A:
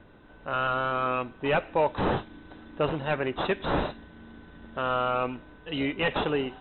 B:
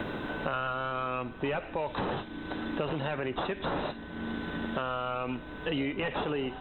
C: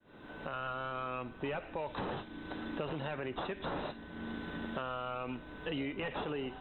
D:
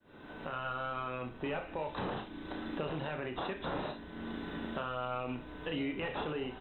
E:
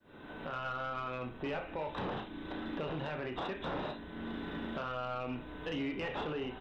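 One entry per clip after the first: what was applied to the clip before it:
limiter -24.5 dBFS, peak gain reduction 10 dB; three-band squash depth 100%; gain +1 dB
opening faded in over 0.68 s; gain -6 dB
early reflections 32 ms -7.5 dB, 65 ms -11.5 dB
soft clip -30.5 dBFS, distortion -17 dB; gain +1 dB

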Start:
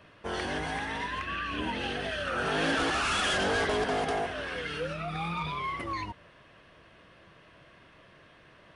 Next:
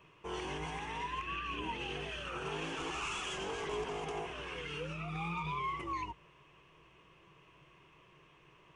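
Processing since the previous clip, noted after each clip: limiter -24.5 dBFS, peak gain reduction 7 dB; ripple EQ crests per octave 0.72, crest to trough 11 dB; gain -7.5 dB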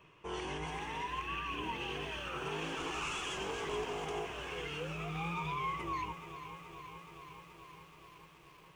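lo-fi delay 0.426 s, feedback 80%, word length 10-bit, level -12 dB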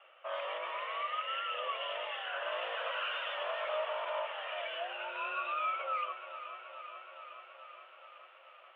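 mistuned SSB +200 Hz 300–2900 Hz; gain +3 dB

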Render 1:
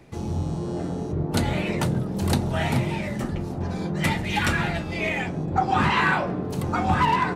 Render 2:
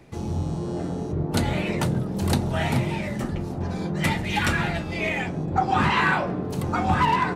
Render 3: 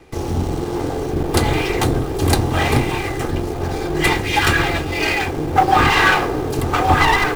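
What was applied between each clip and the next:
nothing audible
minimum comb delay 2.5 ms; in parallel at -8 dB: bit-crush 6-bit; on the sum: gain +6 dB

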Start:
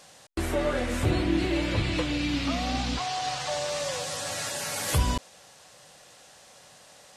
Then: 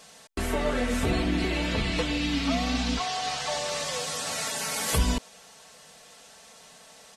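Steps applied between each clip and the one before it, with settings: comb 4.5 ms, depth 70%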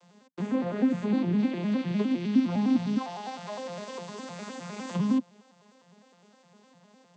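arpeggiated vocoder minor triad, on F3, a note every 0.102 s; small resonant body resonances 220/1000 Hz, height 7 dB, ringing for 35 ms; gain -2.5 dB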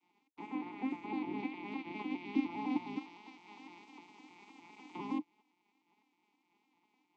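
spectral limiter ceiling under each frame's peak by 23 dB; vibrato 4.7 Hz 39 cents; vowel filter u; gain -2 dB

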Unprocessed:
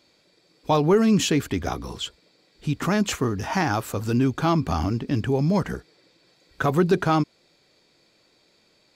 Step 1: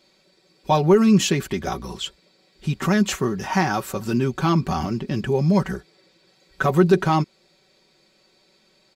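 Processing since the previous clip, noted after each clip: comb 5.3 ms, depth 67%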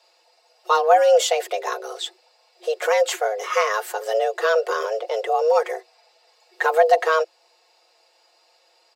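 frequency shift +320 Hz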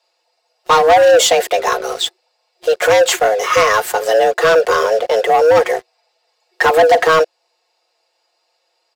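sample leveller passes 3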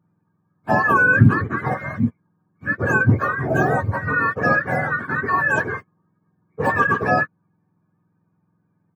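spectrum mirrored in octaves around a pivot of 900 Hz; gain -5.5 dB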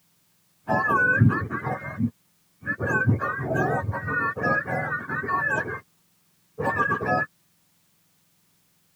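requantised 10-bit, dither triangular; gain -5.5 dB

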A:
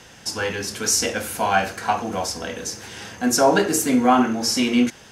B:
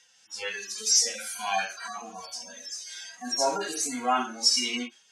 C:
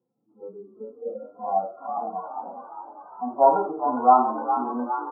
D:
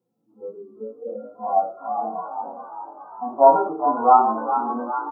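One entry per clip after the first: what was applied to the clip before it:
median-filter separation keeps harmonic; weighting filter ITU-R 468; spectral noise reduction 14 dB; gain -5.5 dB
low-pass sweep 310 Hz -> 870 Hz, 0.53–2.27; FFT band-pass 110–1400 Hz; frequency-shifting echo 0.41 s, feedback 63%, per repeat +54 Hz, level -9 dB; gain +4.5 dB
doubler 18 ms -2.5 dB; gain +1 dB

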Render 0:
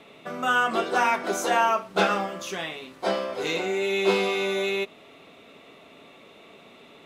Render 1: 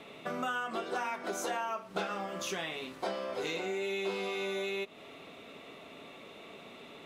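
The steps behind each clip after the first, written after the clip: compressor 6:1, threshold -33 dBFS, peak gain reduction 15.5 dB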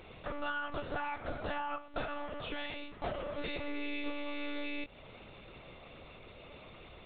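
monotone LPC vocoder at 8 kHz 290 Hz; gain -2 dB

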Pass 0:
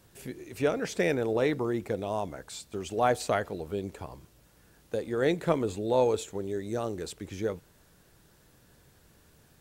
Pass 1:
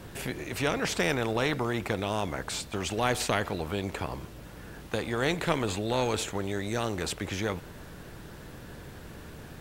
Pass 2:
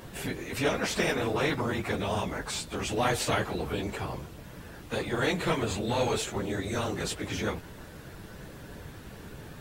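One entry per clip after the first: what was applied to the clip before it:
tone controls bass +6 dB, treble -9 dB; spectral compressor 2:1
phase scrambler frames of 50 ms

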